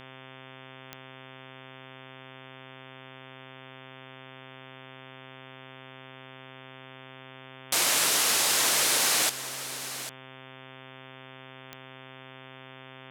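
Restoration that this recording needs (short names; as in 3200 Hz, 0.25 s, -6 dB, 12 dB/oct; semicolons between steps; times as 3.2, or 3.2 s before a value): de-click; de-hum 131.4 Hz, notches 27; inverse comb 0.799 s -12.5 dB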